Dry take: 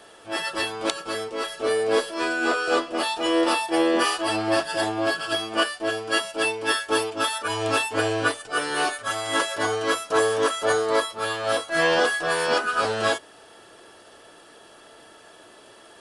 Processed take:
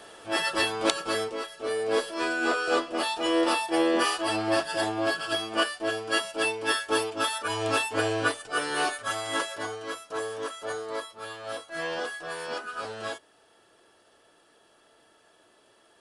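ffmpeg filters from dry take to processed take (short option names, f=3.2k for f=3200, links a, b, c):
-af "volume=8dB,afade=t=out:st=1.24:d=0.23:silence=0.281838,afade=t=in:st=1.47:d=0.64:silence=0.446684,afade=t=out:st=9.12:d=0.66:silence=0.354813"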